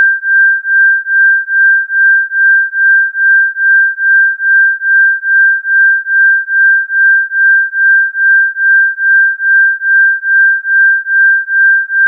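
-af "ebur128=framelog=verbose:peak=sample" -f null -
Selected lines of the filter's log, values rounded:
Integrated loudness:
  I:          -7.1 LUFS
  Threshold: -17.1 LUFS
Loudness range:
  LRA:         0.2 LU
  Threshold: -27.1 LUFS
  LRA low:    -7.2 LUFS
  LRA high:   -7.0 LUFS
Sample peak:
  Peak:       -2.7 dBFS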